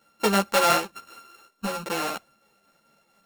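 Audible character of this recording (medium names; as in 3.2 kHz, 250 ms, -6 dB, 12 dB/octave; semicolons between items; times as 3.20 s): a buzz of ramps at a fixed pitch in blocks of 32 samples; tremolo triangle 4.5 Hz, depth 40%; a shimmering, thickened sound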